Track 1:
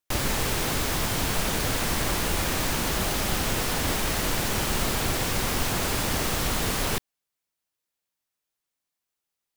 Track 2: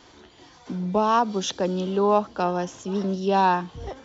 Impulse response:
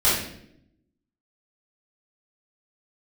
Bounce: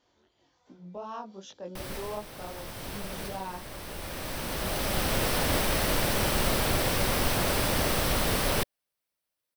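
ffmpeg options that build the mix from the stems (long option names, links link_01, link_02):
-filter_complex "[0:a]equalizer=frequency=6900:width_type=o:width=0.21:gain=-9.5,adelay=1650,volume=-0.5dB[link_01];[1:a]flanger=delay=19:depth=3.9:speed=2.7,volume=-16.5dB,asplit=2[link_02][link_03];[link_03]apad=whole_len=494381[link_04];[link_01][link_04]sidechaincompress=threshold=-50dB:ratio=8:attack=5.8:release=1360[link_05];[link_05][link_02]amix=inputs=2:normalize=0,equalizer=frequency=570:width=4.1:gain=6"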